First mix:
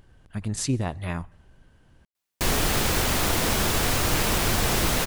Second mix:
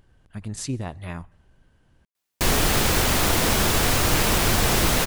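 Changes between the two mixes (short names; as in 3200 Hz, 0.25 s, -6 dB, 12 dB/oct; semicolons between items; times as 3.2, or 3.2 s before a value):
speech -3.5 dB; background +3.0 dB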